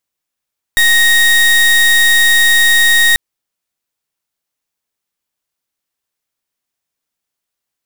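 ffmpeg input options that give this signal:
-f lavfi -i "aevalsrc='0.355*(2*lt(mod(1870*t,1),0.31)-1)':d=2.39:s=44100"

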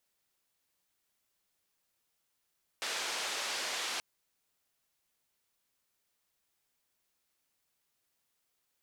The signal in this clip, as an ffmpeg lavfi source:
-f lavfi -i "anoisesrc=c=white:d=1.18:r=44100:seed=1,highpass=f=450,lowpass=f=5400,volume=-25.5dB"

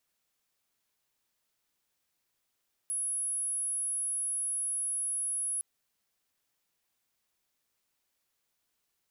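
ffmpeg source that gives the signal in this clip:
-f lavfi -i "aevalsrc='0.0316*sin(2*PI*10700*t)':d=2.71:s=44100"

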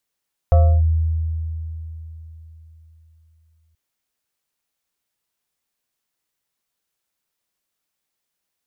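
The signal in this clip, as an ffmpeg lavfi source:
-f lavfi -i "aevalsrc='0.398*pow(10,-3*t/3.77)*sin(2*PI*80.5*t+0.52*clip(1-t/0.3,0,1)*sin(2*PI*7.59*80.5*t))':d=3.23:s=44100"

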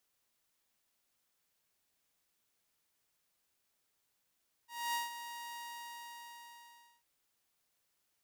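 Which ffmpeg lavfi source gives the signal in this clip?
-f lavfi -i "aevalsrc='0.0316*(2*mod(944*t,1)-1)':d=2.35:s=44100,afade=t=in:d=0.259,afade=t=out:st=0.259:d=0.155:silence=0.282,afade=t=out:st=0.89:d=1.46"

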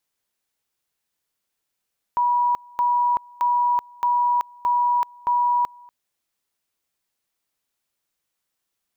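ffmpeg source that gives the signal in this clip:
-f lavfi -i "aevalsrc='pow(10,(-16.5-26.5*gte(mod(t,0.62),0.38))/20)*sin(2*PI*970*t)':d=3.72:s=44100"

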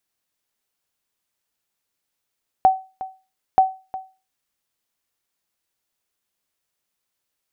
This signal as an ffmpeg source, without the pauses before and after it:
-f lavfi -i "aevalsrc='0.501*(sin(2*PI*759*mod(t,0.93))*exp(-6.91*mod(t,0.93)/0.31)+0.15*sin(2*PI*759*max(mod(t,0.93)-0.36,0))*exp(-6.91*max(mod(t,0.93)-0.36,0)/0.31))':d=1.86:s=44100"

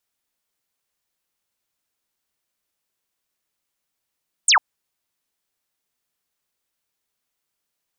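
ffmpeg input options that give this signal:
-f lavfi -i "aevalsrc='0.282*clip(t/0.002,0,1)*clip((0.1-t)/0.002,0,1)*sin(2*PI*9200*0.1/log(780/9200)*(exp(log(780/9200)*t/0.1)-1))':d=0.1:s=44100"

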